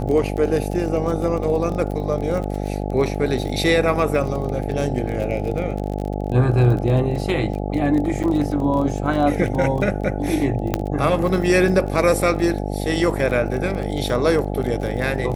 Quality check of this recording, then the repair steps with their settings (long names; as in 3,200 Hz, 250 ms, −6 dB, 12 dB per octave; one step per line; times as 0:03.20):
mains buzz 50 Hz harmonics 17 −25 dBFS
surface crackle 27 per second −26 dBFS
0:08.23–0:08.24: drop-out 7.7 ms
0:10.74: click −6 dBFS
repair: click removal
hum removal 50 Hz, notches 17
repair the gap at 0:08.23, 7.7 ms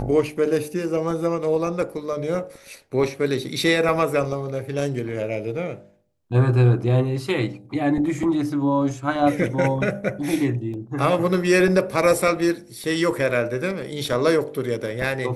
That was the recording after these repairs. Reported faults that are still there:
0:10.74: click